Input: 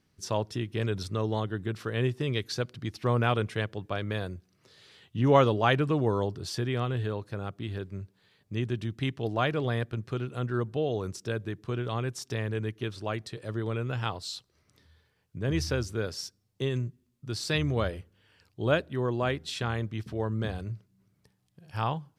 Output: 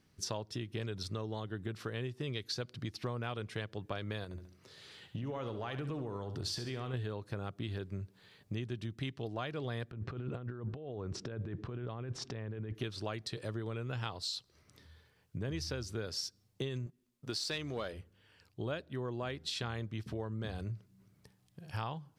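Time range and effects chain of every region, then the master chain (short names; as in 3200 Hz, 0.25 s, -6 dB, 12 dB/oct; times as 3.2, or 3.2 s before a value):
4.24–6.94 compressor 8:1, threshold -35 dBFS + feedback echo 69 ms, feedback 39%, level -10.5 dB
9.91–12.75 negative-ratio compressor -41 dBFS + tape spacing loss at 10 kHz 26 dB
16.86–17.93 bell 85 Hz -12.5 dB 2 oct + sample leveller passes 1
whole clip: vocal rider within 3 dB 0.5 s; dynamic EQ 4500 Hz, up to +6 dB, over -51 dBFS, Q 1.5; compressor 5:1, threshold -37 dBFS; gain +1 dB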